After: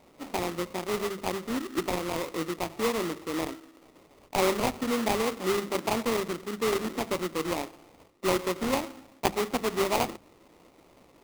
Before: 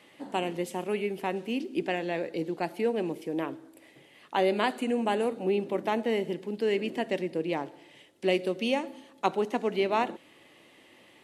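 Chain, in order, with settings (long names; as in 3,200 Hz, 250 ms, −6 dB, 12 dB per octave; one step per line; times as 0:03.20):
brick-wall band-pass 140–3,800 Hz
sample-rate reduction 1,600 Hz, jitter 20%
mains-hum notches 50/100/150/200 Hz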